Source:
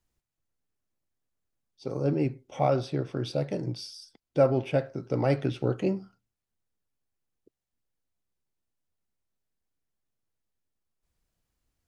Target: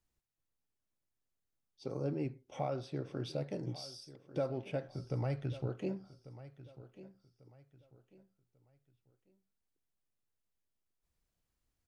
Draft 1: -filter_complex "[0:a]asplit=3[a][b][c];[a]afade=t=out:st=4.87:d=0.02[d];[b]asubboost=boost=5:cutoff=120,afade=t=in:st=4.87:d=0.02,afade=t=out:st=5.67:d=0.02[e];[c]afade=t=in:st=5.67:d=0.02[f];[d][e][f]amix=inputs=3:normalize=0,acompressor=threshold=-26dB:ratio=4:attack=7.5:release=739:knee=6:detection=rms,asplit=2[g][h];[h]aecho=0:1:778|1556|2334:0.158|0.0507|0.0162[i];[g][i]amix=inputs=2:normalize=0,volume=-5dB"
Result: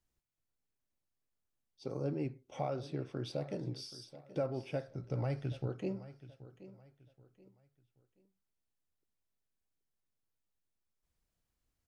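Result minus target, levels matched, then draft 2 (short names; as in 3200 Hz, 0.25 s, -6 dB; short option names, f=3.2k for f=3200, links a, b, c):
echo 0.366 s early
-filter_complex "[0:a]asplit=3[a][b][c];[a]afade=t=out:st=4.87:d=0.02[d];[b]asubboost=boost=5:cutoff=120,afade=t=in:st=4.87:d=0.02,afade=t=out:st=5.67:d=0.02[e];[c]afade=t=in:st=5.67:d=0.02[f];[d][e][f]amix=inputs=3:normalize=0,acompressor=threshold=-26dB:ratio=4:attack=7.5:release=739:knee=6:detection=rms,asplit=2[g][h];[h]aecho=0:1:1144|2288|3432:0.158|0.0507|0.0162[i];[g][i]amix=inputs=2:normalize=0,volume=-5dB"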